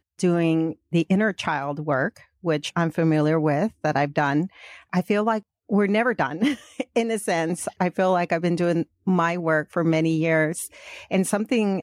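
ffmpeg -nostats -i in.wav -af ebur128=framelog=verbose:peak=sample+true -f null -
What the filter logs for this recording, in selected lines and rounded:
Integrated loudness:
  I:         -23.3 LUFS
  Threshold: -33.4 LUFS
Loudness range:
  LRA:         1.4 LU
  Threshold: -43.5 LUFS
  LRA low:   -24.0 LUFS
  LRA high:  -22.7 LUFS
Sample peak:
  Peak:       -9.3 dBFS
True peak:
  Peak:       -9.3 dBFS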